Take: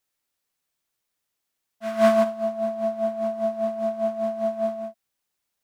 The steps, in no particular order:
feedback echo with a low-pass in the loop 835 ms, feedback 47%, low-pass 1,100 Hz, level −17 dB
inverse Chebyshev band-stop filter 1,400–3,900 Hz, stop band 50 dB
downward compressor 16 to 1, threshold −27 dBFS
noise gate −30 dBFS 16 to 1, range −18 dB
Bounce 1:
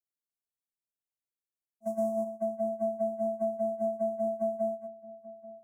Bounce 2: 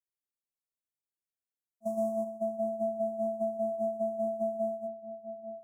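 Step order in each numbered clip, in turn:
inverse Chebyshev band-stop filter, then noise gate, then downward compressor, then feedback echo with a low-pass in the loop
noise gate, then feedback echo with a low-pass in the loop, then downward compressor, then inverse Chebyshev band-stop filter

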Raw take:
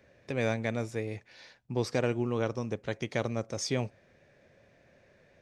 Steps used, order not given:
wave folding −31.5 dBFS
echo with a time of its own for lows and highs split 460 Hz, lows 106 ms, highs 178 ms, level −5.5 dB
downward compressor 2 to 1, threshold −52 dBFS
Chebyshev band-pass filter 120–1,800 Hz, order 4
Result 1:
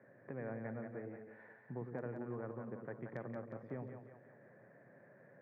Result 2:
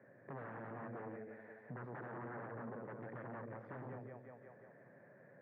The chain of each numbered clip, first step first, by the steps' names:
downward compressor, then Chebyshev band-pass filter, then wave folding, then echo with a time of its own for lows and highs
echo with a time of its own for lows and highs, then wave folding, then downward compressor, then Chebyshev band-pass filter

